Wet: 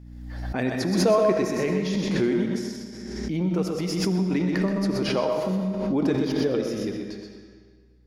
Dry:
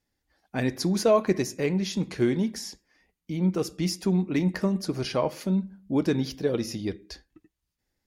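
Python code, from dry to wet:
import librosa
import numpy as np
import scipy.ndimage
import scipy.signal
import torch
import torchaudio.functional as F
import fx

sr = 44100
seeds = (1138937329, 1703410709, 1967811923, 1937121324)

y = fx.peak_eq(x, sr, hz=71.0, db=-14.0, octaves=1.4)
y = y + 10.0 ** (-5.5 / 20.0) * np.pad(y, (int(126 * sr / 1000.0), 0))[:len(y)]
y = fx.add_hum(y, sr, base_hz=60, snr_db=30)
y = fx.high_shelf(y, sr, hz=4200.0, db=-9.5)
y = fx.rev_freeverb(y, sr, rt60_s=1.7, hf_ratio=0.9, predelay_ms=35, drr_db=4.5)
y = fx.pre_swell(y, sr, db_per_s=33.0)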